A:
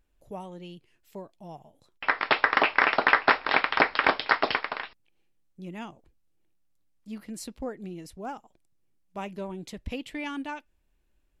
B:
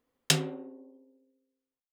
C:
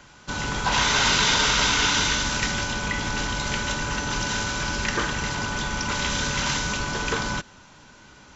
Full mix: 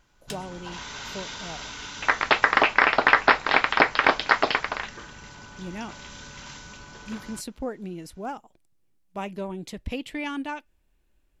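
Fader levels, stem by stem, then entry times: +3.0 dB, -14.0 dB, -17.0 dB; 0.00 s, 0.00 s, 0.00 s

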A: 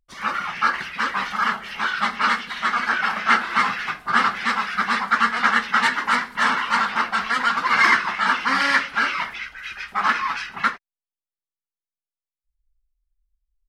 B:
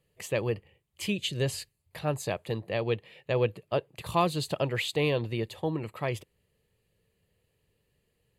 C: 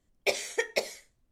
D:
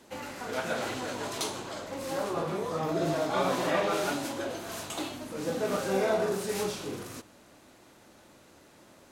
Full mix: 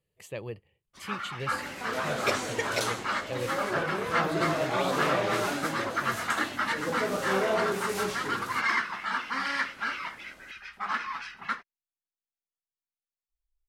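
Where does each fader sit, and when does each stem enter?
-11.0 dB, -8.5 dB, -2.0 dB, -0.5 dB; 0.85 s, 0.00 s, 2.00 s, 1.40 s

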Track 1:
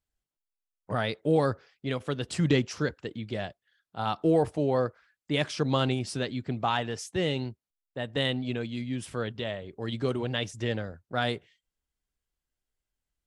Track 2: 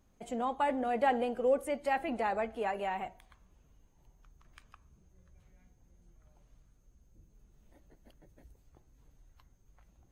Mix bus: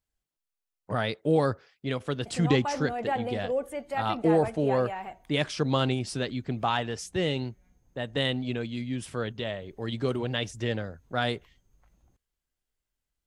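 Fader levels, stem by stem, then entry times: +0.5 dB, -1.0 dB; 0.00 s, 2.05 s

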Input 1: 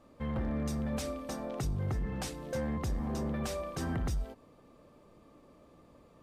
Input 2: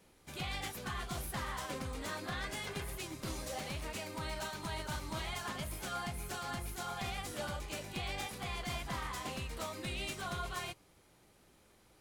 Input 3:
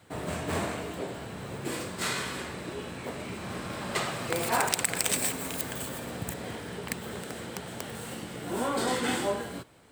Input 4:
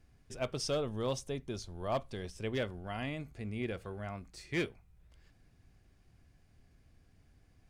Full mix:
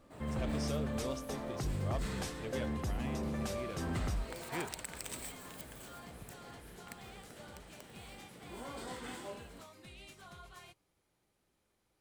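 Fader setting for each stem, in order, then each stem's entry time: -3.0 dB, -13.5 dB, -16.5 dB, -7.5 dB; 0.00 s, 0.00 s, 0.00 s, 0.00 s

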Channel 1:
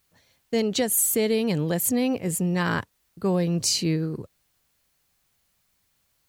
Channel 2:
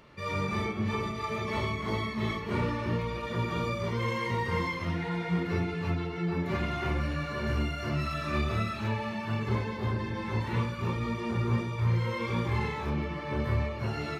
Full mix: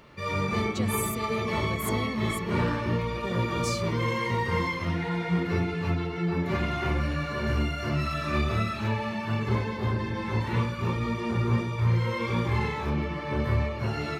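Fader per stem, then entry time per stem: -12.5 dB, +3.0 dB; 0.00 s, 0.00 s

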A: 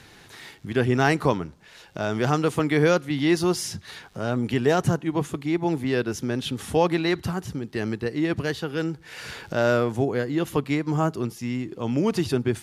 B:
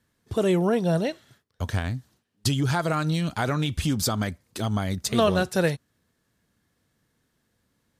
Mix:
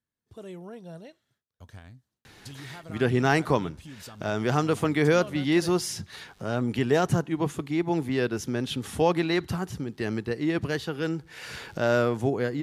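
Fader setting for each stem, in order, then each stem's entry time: -2.0 dB, -19.5 dB; 2.25 s, 0.00 s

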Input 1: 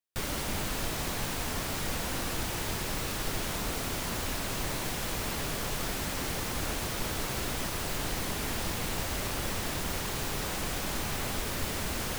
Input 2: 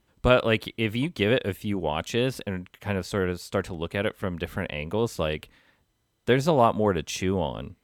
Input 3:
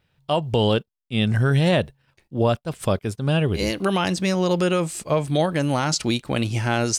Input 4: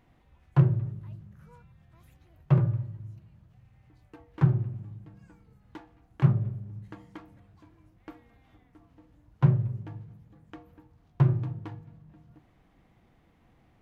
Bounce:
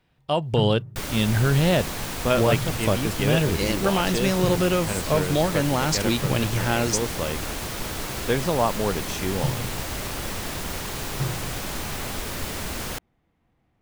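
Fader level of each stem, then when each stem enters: +2.5 dB, -2.5 dB, -1.5 dB, -6.5 dB; 0.80 s, 2.00 s, 0.00 s, 0.00 s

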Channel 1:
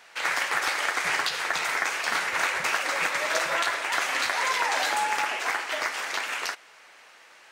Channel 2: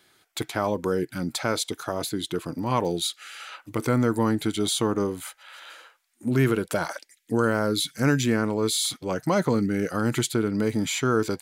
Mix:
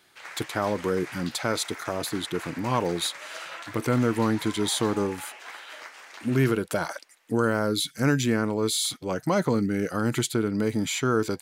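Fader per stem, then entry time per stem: -15.0 dB, -1.0 dB; 0.00 s, 0.00 s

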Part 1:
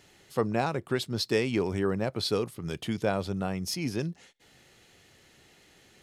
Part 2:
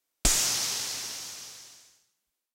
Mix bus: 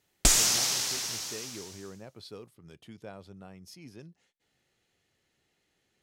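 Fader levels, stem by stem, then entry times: -17.0 dB, +2.0 dB; 0.00 s, 0.00 s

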